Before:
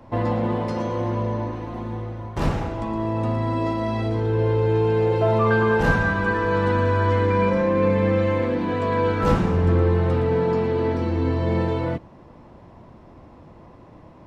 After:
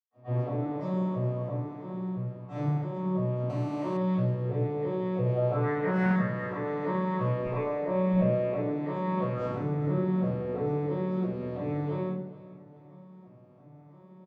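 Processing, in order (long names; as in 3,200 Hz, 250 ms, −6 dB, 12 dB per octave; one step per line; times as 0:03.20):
vocoder with an arpeggio as carrier minor triad, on B2, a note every 336 ms
0:07.34–0:08.02: high-pass filter 330 Hz 6 dB per octave
repeating echo 420 ms, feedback 41%, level −18 dB
convolution reverb RT60 0.60 s, pre-delay 100 ms
0:03.50–0:03.97: phone interference −54 dBFS
0:05.75–0:06.16: highs frequency-modulated by the lows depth 0.32 ms
level +6 dB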